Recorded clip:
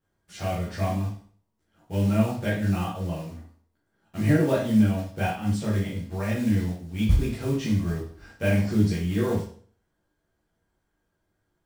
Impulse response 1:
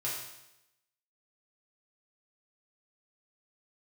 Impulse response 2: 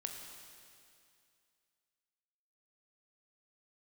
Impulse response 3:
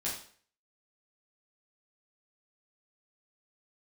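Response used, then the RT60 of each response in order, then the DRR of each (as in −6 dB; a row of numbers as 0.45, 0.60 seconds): 3; 0.90, 2.4, 0.50 seconds; −7.5, 2.5, −7.5 decibels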